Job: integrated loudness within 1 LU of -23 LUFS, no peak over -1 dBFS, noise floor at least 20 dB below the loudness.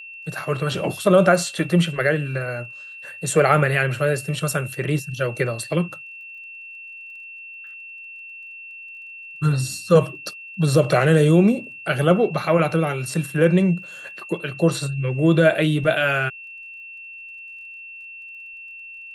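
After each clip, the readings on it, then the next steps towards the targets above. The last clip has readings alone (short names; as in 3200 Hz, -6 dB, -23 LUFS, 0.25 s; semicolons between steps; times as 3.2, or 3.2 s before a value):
ticks 23/s; steady tone 2700 Hz; tone level -36 dBFS; loudness -20.5 LUFS; peak -2.5 dBFS; loudness target -23.0 LUFS
-> de-click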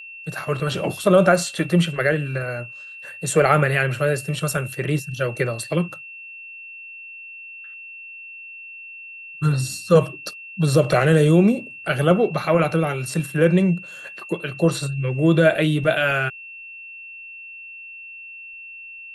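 ticks 0.052/s; steady tone 2700 Hz; tone level -36 dBFS
-> notch 2700 Hz, Q 30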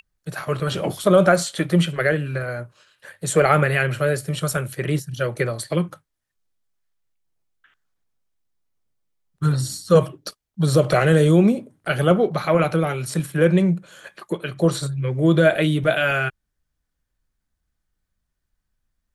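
steady tone none; loudness -20.5 LUFS; peak -2.5 dBFS; loudness target -23.0 LUFS
-> gain -2.5 dB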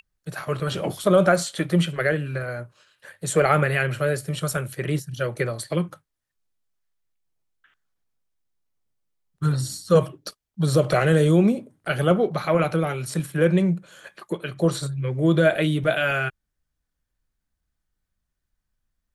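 loudness -23.0 LUFS; peak -5.0 dBFS; noise floor -80 dBFS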